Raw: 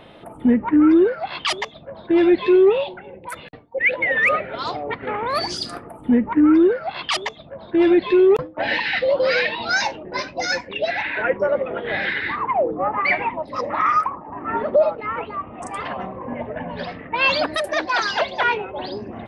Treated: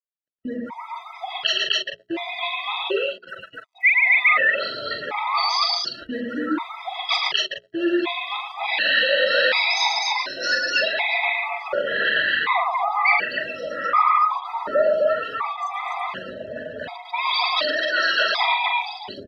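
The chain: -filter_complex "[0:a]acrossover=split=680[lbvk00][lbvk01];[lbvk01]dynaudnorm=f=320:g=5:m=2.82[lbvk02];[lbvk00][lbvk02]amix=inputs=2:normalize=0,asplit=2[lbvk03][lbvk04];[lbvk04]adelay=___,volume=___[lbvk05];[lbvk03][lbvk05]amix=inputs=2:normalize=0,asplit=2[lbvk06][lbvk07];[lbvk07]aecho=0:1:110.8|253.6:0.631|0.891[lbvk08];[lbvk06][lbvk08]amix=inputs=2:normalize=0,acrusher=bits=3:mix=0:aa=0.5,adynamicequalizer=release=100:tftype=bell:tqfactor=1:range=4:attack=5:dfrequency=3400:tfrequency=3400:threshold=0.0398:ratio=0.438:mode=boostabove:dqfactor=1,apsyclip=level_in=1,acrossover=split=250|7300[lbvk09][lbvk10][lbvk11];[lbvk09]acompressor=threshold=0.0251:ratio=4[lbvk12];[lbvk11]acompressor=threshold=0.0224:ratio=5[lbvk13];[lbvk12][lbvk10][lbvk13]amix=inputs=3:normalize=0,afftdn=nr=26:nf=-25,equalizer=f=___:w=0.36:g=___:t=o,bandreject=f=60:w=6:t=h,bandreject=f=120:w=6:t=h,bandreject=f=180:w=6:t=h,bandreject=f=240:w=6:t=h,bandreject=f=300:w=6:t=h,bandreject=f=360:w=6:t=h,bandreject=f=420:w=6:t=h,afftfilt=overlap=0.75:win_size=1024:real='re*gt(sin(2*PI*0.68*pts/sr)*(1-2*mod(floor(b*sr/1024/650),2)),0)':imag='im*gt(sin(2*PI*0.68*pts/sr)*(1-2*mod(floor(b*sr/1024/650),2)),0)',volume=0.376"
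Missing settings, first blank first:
43, 0.562, 8k, -2.5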